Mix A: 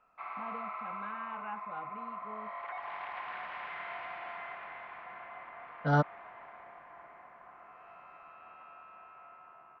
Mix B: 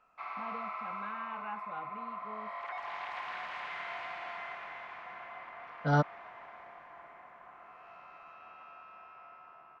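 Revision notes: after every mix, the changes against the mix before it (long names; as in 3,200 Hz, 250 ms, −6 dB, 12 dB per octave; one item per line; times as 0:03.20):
second voice: add high-frequency loss of the air 120 metres
background: remove high-frequency loss of the air 83 metres
master: remove low-pass filter 3,100 Hz 12 dB per octave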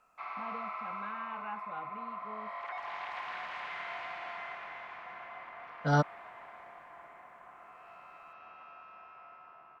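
second voice: remove high-frequency loss of the air 120 metres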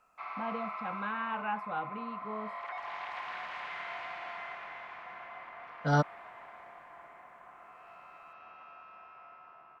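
first voice +8.0 dB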